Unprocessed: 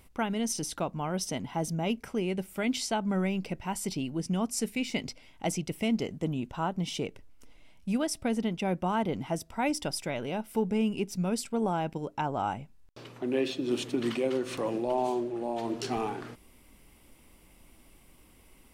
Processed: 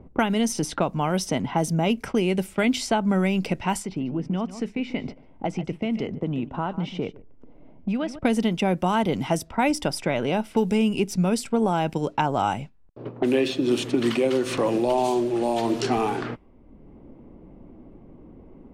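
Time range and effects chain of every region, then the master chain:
0:03.82–0:08.19: downward compressor 2 to 1, threshold −45 dBFS + single-tap delay 146 ms −14 dB
whole clip: noise gate −45 dBFS, range −11 dB; low-pass that shuts in the quiet parts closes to 460 Hz, open at −29 dBFS; multiband upward and downward compressor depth 70%; level +7.5 dB

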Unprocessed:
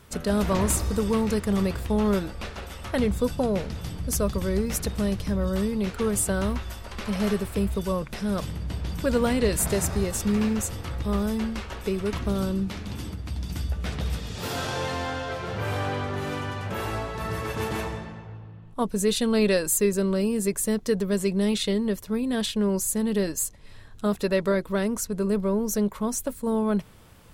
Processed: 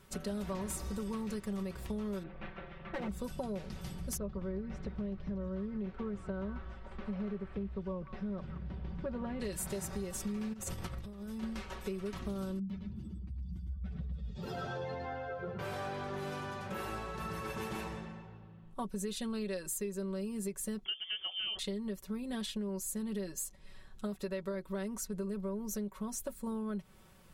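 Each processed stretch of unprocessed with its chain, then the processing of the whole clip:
0:02.23–0:03.09: lower of the sound and its delayed copy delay 5.8 ms + low-pass filter 2,700 Hz 24 dB per octave + hard clipping −23 dBFS
0:04.17–0:09.40: head-to-tape spacing loss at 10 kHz 38 dB + echo through a band-pass that steps 174 ms, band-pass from 1,600 Hz, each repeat 0.7 octaves, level −6.5 dB + highs frequency-modulated by the lows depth 0.1 ms
0:10.53–0:11.43: parametric band 100 Hz +7.5 dB 0.87 octaves + compressor whose output falls as the input rises −30 dBFS, ratio −0.5
0:12.59–0:15.59: expanding power law on the bin magnitudes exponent 1.9 + single-tap delay 108 ms −5.5 dB
0:20.85–0:21.59: voice inversion scrambler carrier 3,300 Hz + hum removal 255.7 Hz, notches 5
whole clip: comb filter 5.3 ms, depth 62%; downward compressor, threshold −26 dBFS; level −9 dB

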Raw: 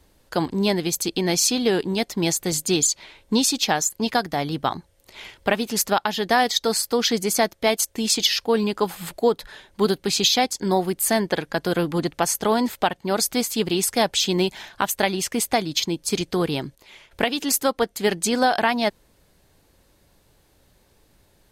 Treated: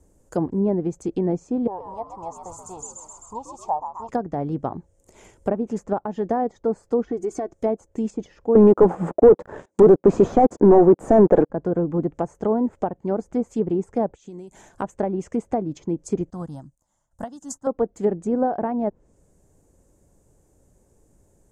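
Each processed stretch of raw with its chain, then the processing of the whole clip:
0:01.67–0:04.09: drawn EQ curve 100 Hz 0 dB, 160 Hz −23 dB, 340 Hz −24 dB, 950 Hz +12 dB, 1,500 Hz −20 dB + echo with shifted repeats 130 ms, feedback 56%, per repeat +81 Hz, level −7 dB + one half of a high-frequency compander encoder only
0:07.05–0:07.53: high-shelf EQ 3,300 Hz −11 dB + comb filter 2.7 ms, depth 75% + downward compressor 4 to 1, threshold −22 dBFS
0:08.55–0:11.50: high-pass filter 260 Hz + leveller curve on the samples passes 5
0:14.06–0:14.71: downward compressor 12 to 1, threshold −34 dBFS + notch filter 5,200 Hz, Q 11
0:16.30–0:17.67: phaser with its sweep stopped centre 1,000 Hz, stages 4 + expander for the loud parts, over −44 dBFS
whole clip: treble cut that deepens with the level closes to 1,100 Hz, closed at −18 dBFS; drawn EQ curve 480 Hz 0 dB, 4,200 Hz −24 dB, 7,100 Hz +3 dB, 14,000 Hz −15 dB; level +1 dB

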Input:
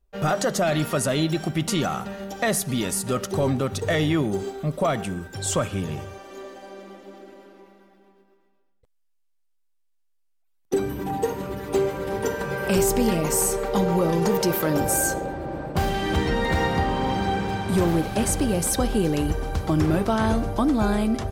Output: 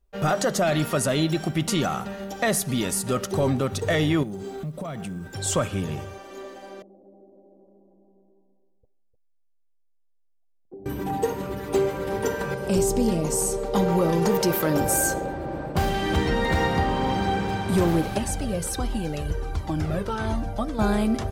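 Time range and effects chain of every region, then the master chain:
0:04.23–0:05.29: parametric band 160 Hz +9 dB 0.89 octaves + downward compressor, threshold −30 dBFS + log-companded quantiser 8 bits
0:06.82–0:10.86: Butterworth low-pass 770 Hz 48 dB per octave + single-tap delay 302 ms −9.5 dB + downward compressor 2 to 1, threshold −55 dBFS
0:12.54–0:13.74: low-pass filter 9,900 Hz + parametric band 1,800 Hz −10.5 dB 1.9 octaves
0:18.18–0:20.79: high-shelf EQ 12,000 Hz −6.5 dB + notch filter 1,100 Hz, Q 26 + flanger whose copies keep moving one way falling 1.4 Hz
whole clip: no processing

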